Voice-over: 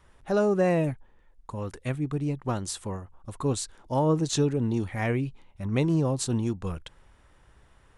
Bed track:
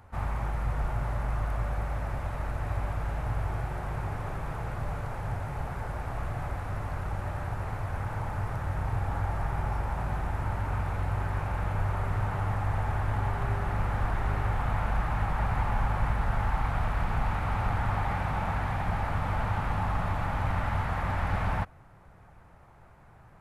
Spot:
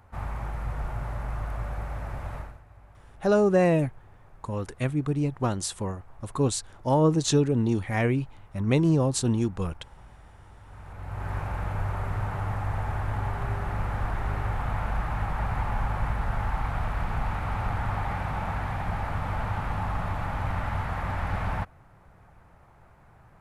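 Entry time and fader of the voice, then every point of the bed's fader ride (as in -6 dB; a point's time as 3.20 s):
2.95 s, +2.5 dB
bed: 2.38 s -2 dB
2.64 s -21 dB
10.59 s -21 dB
11.31 s -0.5 dB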